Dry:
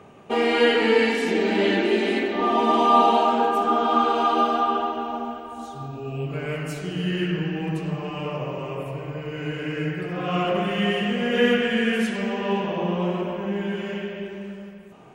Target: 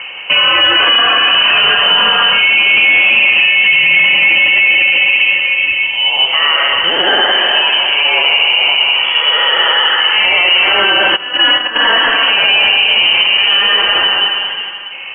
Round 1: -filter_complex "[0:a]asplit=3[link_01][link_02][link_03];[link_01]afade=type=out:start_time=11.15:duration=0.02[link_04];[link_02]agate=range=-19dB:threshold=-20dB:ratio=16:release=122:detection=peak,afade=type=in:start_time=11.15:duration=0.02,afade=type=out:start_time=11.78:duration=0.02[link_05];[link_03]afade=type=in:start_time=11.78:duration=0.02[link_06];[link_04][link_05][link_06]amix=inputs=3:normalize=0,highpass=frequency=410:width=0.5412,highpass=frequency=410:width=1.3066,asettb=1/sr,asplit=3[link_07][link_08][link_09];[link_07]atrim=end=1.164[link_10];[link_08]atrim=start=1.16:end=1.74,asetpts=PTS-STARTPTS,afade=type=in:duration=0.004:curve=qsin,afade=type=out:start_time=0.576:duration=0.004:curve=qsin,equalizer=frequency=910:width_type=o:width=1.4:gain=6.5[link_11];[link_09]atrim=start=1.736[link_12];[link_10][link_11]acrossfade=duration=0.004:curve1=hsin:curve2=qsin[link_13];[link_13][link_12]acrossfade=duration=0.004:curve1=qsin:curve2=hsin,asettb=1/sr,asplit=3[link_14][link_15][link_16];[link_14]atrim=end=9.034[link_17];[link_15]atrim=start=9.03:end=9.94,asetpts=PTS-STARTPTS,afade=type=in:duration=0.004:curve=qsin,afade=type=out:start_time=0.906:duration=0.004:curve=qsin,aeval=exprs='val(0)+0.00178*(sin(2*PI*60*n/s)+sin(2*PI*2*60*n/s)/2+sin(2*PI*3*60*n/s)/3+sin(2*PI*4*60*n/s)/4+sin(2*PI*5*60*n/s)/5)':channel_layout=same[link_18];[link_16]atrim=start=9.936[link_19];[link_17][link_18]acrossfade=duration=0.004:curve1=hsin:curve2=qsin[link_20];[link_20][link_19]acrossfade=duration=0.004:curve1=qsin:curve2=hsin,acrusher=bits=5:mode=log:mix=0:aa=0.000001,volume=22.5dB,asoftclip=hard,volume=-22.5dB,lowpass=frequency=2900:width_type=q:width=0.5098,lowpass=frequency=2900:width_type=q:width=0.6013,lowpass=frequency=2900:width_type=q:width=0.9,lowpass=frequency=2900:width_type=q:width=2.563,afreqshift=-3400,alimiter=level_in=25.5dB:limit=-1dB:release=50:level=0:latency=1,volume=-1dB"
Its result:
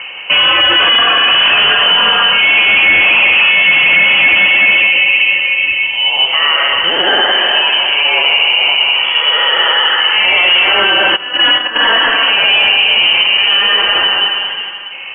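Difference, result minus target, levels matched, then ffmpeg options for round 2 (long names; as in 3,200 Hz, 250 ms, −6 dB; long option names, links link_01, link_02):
gain into a clipping stage and back: distortion +10 dB
-filter_complex "[0:a]asplit=3[link_01][link_02][link_03];[link_01]afade=type=out:start_time=11.15:duration=0.02[link_04];[link_02]agate=range=-19dB:threshold=-20dB:ratio=16:release=122:detection=peak,afade=type=in:start_time=11.15:duration=0.02,afade=type=out:start_time=11.78:duration=0.02[link_05];[link_03]afade=type=in:start_time=11.78:duration=0.02[link_06];[link_04][link_05][link_06]amix=inputs=3:normalize=0,highpass=frequency=410:width=0.5412,highpass=frequency=410:width=1.3066,asettb=1/sr,asplit=3[link_07][link_08][link_09];[link_07]atrim=end=1.164[link_10];[link_08]atrim=start=1.16:end=1.74,asetpts=PTS-STARTPTS,afade=type=in:duration=0.004:curve=qsin,afade=type=out:start_time=0.576:duration=0.004:curve=qsin,equalizer=frequency=910:width_type=o:width=1.4:gain=6.5[link_11];[link_09]atrim=start=1.736[link_12];[link_10][link_11]acrossfade=duration=0.004:curve1=hsin:curve2=qsin[link_13];[link_13][link_12]acrossfade=duration=0.004:curve1=qsin:curve2=hsin,asettb=1/sr,asplit=3[link_14][link_15][link_16];[link_14]atrim=end=9.034[link_17];[link_15]atrim=start=9.03:end=9.94,asetpts=PTS-STARTPTS,afade=type=in:duration=0.004:curve=qsin,afade=type=out:start_time=0.906:duration=0.004:curve=qsin,aeval=exprs='val(0)+0.00178*(sin(2*PI*60*n/s)+sin(2*PI*2*60*n/s)/2+sin(2*PI*3*60*n/s)/3+sin(2*PI*4*60*n/s)/4+sin(2*PI*5*60*n/s)/5)':channel_layout=same[link_18];[link_16]atrim=start=9.936[link_19];[link_17][link_18]acrossfade=duration=0.004:curve1=hsin:curve2=qsin[link_20];[link_20][link_19]acrossfade=duration=0.004:curve1=qsin:curve2=hsin,acrusher=bits=5:mode=log:mix=0:aa=0.000001,volume=14.5dB,asoftclip=hard,volume=-14.5dB,lowpass=frequency=2900:width_type=q:width=0.5098,lowpass=frequency=2900:width_type=q:width=0.6013,lowpass=frequency=2900:width_type=q:width=0.9,lowpass=frequency=2900:width_type=q:width=2.563,afreqshift=-3400,alimiter=level_in=25.5dB:limit=-1dB:release=50:level=0:latency=1,volume=-1dB"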